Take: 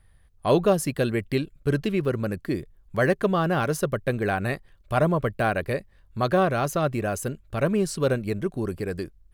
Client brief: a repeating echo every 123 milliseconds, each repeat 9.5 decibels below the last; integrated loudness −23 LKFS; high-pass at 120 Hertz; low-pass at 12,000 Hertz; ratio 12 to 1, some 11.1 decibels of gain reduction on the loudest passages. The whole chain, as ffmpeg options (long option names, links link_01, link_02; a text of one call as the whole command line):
ffmpeg -i in.wav -af "highpass=120,lowpass=12000,acompressor=threshold=-27dB:ratio=12,aecho=1:1:123|246|369|492:0.335|0.111|0.0365|0.012,volume=10dB" out.wav